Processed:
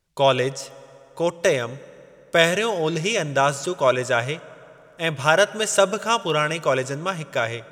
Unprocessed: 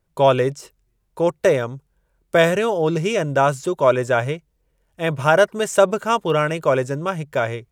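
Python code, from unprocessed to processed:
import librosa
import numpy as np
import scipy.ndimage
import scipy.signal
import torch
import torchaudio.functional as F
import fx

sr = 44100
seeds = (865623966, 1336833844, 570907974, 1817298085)

y = fx.peak_eq(x, sr, hz=4800.0, db=11.0, octaves=2.7)
y = fx.rev_fdn(y, sr, rt60_s=3.1, lf_ratio=1.0, hf_ratio=0.6, size_ms=32.0, drr_db=18.0)
y = y * librosa.db_to_amplitude(-4.5)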